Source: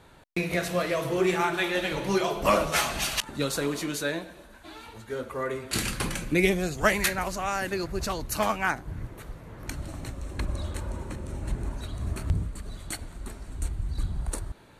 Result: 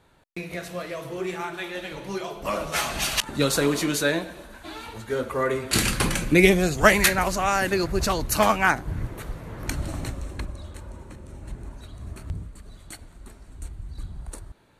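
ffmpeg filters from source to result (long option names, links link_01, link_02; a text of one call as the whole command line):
ffmpeg -i in.wav -af "volume=6.5dB,afade=type=in:start_time=2.53:duration=0.95:silence=0.237137,afade=type=out:start_time=9.99:duration=0.54:silence=0.237137" out.wav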